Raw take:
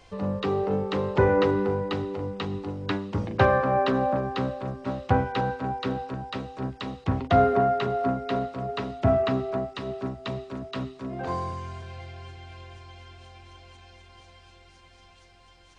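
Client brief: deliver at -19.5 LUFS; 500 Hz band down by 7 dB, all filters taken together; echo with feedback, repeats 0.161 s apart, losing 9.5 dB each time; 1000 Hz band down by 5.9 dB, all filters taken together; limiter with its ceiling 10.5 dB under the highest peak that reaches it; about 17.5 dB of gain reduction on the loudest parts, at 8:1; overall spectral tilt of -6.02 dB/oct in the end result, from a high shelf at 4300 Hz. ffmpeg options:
-af "equalizer=f=500:t=o:g=-8,equalizer=f=1k:t=o:g=-4,highshelf=f=4.3k:g=-9,acompressor=threshold=-37dB:ratio=8,alimiter=level_in=10dB:limit=-24dB:level=0:latency=1,volume=-10dB,aecho=1:1:161|322|483|644:0.335|0.111|0.0365|0.012,volume=23.5dB"

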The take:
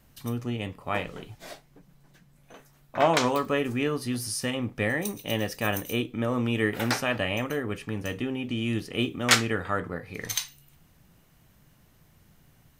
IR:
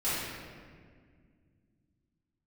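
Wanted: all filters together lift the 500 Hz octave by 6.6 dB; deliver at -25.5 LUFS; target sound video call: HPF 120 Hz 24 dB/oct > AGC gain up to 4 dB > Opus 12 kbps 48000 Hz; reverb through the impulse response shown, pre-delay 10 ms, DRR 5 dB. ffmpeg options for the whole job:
-filter_complex "[0:a]equalizer=f=500:t=o:g=8,asplit=2[a][b];[1:a]atrim=start_sample=2205,adelay=10[c];[b][c]afir=irnorm=-1:irlink=0,volume=-14.5dB[d];[a][d]amix=inputs=2:normalize=0,highpass=f=120:w=0.5412,highpass=f=120:w=1.3066,dynaudnorm=m=4dB" -ar 48000 -c:a libopus -b:a 12k

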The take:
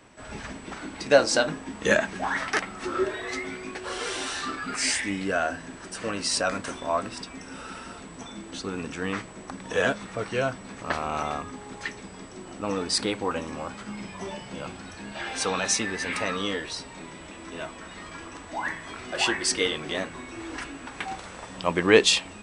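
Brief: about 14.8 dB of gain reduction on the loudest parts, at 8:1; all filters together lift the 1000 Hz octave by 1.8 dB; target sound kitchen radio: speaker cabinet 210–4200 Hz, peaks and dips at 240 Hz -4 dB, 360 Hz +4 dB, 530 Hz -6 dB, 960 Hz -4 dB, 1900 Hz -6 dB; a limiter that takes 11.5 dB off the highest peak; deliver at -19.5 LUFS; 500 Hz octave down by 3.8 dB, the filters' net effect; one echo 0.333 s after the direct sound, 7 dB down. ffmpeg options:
-af "equalizer=f=500:t=o:g=-4,equalizer=f=1k:t=o:g=6.5,acompressor=threshold=-27dB:ratio=8,alimiter=limit=-23.5dB:level=0:latency=1,highpass=210,equalizer=f=240:t=q:w=4:g=-4,equalizer=f=360:t=q:w=4:g=4,equalizer=f=530:t=q:w=4:g=-6,equalizer=f=960:t=q:w=4:g=-4,equalizer=f=1.9k:t=q:w=4:g=-6,lowpass=f=4.2k:w=0.5412,lowpass=f=4.2k:w=1.3066,aecho=1:1:333:0.447,volume=17.5dB"

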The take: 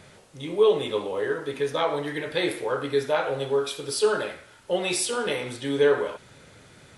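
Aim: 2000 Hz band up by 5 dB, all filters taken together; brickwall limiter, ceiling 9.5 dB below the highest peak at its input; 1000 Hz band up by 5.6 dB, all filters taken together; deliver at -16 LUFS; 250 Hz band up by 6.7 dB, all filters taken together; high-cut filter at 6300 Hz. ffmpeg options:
-af "lowpass=6.3k,equalizer=f=250:t=o:g=8.5,equalizer=f=1k:t=o:g=5.5,equalizer=f=2k:t=o:g=4.5,volume=9dB,alimiter=limit=-5.5dB:level=0:latency=1"

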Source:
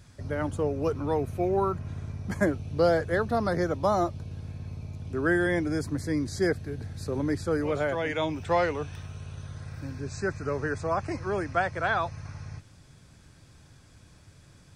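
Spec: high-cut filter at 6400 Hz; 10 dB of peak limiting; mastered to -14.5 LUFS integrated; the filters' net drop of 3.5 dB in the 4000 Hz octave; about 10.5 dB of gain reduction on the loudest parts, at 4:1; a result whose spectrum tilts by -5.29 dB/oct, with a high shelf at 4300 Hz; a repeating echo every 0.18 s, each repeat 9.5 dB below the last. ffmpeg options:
-af "lowpass=6.4k,equalizer=f=4k:t=o:g=-7.5,highshelf=f=4.3k:g=6.5,acompressor=threshold=-32dB:ratio=4,alimiter=level_in=6.5dB:limit=-24dB:level=0:latency=1,volume=-6.5dB,aecho=1:1:180|360|540|720:0.335|0.111|0.0365|0.012,volume=24.5dB"

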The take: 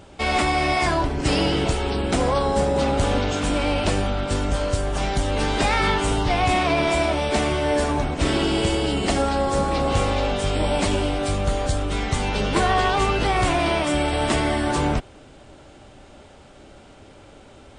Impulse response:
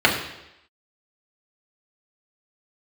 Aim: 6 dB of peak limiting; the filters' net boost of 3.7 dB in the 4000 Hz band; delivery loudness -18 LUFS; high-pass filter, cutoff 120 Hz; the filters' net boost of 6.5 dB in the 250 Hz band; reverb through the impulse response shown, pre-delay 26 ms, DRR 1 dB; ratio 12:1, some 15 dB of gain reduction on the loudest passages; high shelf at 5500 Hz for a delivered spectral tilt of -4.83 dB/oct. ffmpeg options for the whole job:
-filter_complex "[0:a]highpass=120,equalizer=f=250:t=o:g=8.5,equalizer=f=4k:t=o:g=3,highshelf=f=5.5k:g=5,acompressor=threshold=-29dB:ratio=12,alimiter=level_in=0.5dB:limit=-24dB:level=0:latency=1,volume=-0.5dB,asplit=2[a][b];[1:a]atrim=start_sample=2205,adelay=26[c];[b][c]afir=irnorm=-1:irlink=0,volume=-23dB[d];[a][d]amix=inputs=2:normalize=0,volume=13dB"

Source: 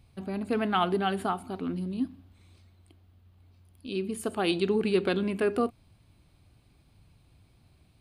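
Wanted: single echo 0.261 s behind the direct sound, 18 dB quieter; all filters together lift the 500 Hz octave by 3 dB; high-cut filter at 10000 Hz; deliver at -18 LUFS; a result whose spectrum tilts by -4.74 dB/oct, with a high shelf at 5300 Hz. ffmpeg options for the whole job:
-af "lowpass=10k,equalizer=f=500:t=o:g=4,highshelf=f=5.3k:g=-3,aecho=1:1:261:0.126,volume=9.5dB"

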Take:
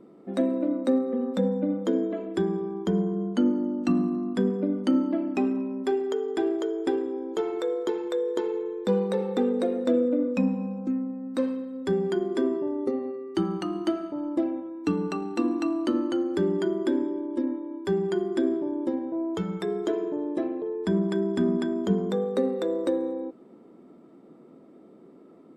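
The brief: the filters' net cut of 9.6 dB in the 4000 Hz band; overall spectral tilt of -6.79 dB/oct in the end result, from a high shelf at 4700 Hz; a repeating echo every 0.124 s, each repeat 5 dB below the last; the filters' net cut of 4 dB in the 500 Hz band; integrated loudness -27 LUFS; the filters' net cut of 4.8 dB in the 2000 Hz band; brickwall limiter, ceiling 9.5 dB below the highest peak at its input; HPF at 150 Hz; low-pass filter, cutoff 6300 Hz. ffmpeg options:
-af "highpass=150,lowpass=6.3k,equalizer=f=500:t=o:g=-5,equalizer=f=2k:t=o:g=-3.5,equalizer=f=4k:t=o:g=-7.5,highshelf=f=4.7k:g=-7,alimiter=limit=-23.5dB:level=0:latency=1,aecho=1:1:124|248|372|496|620|744|868:0.562|0.315|0.176|0.0988|0.0553|0.031|0.0173,volume=4.5dB"

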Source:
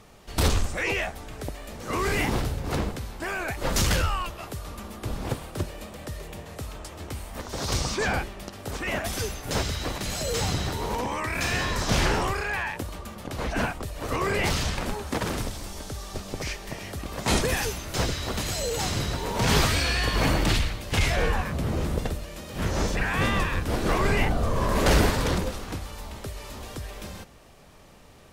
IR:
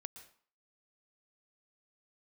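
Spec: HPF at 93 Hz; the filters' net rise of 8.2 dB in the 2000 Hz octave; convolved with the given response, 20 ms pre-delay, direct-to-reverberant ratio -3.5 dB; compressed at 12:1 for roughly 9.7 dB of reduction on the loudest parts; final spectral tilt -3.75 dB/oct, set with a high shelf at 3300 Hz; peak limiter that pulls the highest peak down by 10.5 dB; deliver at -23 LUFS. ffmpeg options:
-filter_complex "[0:a]highpass=93,equalizer=f=2k:t=o:g=8.5,highshelf=f=3.3k:g=5,acompressor=threshold=-25dB:ratio=12,alimiter=limit=-22.5dB:level=0:latency=1,asplit=2[a][b];[1:a]atrim=start_sample=2205,adelay=20[c];[b][c]afir=irnorm=-1:irlink=0,volume=8dB[d];[a][d]amix=inputs=2:normalize=0,volume=4dB"

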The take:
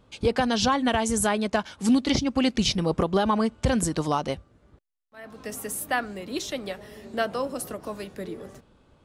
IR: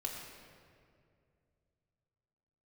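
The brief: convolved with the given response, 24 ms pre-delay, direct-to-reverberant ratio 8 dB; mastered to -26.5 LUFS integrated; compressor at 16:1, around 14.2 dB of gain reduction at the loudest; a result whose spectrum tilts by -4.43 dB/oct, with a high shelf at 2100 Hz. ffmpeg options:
-filter_complex "[0:a]highshelf=f=2.1k:g=-3,acompressor=threshold=-31dB:ratio=16,asplit=2[a][b];[1:a]atrim=start_sample=2205,adelay=24[c];[b][c]afir=irnorm=-1:irlink=0,volume=-9dB[d];[a][d]amix=inputs=2:normalize=0,volume=9.5dB"

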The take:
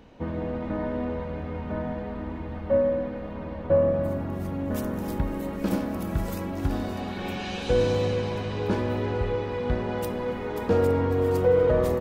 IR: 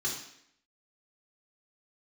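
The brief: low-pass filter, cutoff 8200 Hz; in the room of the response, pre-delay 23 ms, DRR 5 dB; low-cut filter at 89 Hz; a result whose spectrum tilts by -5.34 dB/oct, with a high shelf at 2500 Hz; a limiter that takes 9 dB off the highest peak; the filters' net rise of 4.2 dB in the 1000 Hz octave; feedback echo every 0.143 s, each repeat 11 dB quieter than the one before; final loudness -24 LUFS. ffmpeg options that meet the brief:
-filter_complex "[0:a]highpass=89,lowpass=8.2k,equalizer=f=1k:t=o:g=6,highshelf=f=2.5k:g=-5.5,alimiter=limit=-19dB:level=0:latency=1,aecho=1:1:143|286|429:0.282|0.0789|0.0221,asplit=2[a][b];[1:a]atrim=start_sample=2205,adelay=23[c];[b][c]afir=irnorm=-1:irlink=0,volume=-9.5dB[d];[a][d]amix=inputs=2:normalize=0,volume=3.5dB"

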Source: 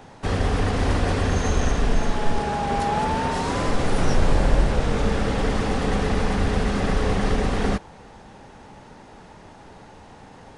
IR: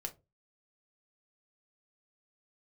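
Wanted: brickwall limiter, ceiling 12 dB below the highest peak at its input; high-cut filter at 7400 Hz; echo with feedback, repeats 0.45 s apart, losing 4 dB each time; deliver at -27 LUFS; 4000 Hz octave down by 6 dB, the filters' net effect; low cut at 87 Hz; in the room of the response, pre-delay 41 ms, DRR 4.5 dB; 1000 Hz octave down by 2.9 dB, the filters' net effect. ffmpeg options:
-filter_complex "[0:a]highpass=87,lowpass=7.4k,equalizer=f=1k:t=o:g=-3.5,equalizer=f=4k:t=o:g=-7.5,alimiter=limit=-23dB:level=0:latency=1,aecho=1:1:450|900|1350|1800|2250|2700|3150|3600|4050:0.631|0.398|0.25|0.158|0.0994|0.0626|0.0394|0.0249|0.0157,asplit=2[a][b];[1:a]atrim=start_sample=2205,adelay=41[c];[b][c]afir=irnorm=-1:irlink=0,volume=-3dB[d];[a][d]amix=inputs=2:normalize=0,volume=2dB"

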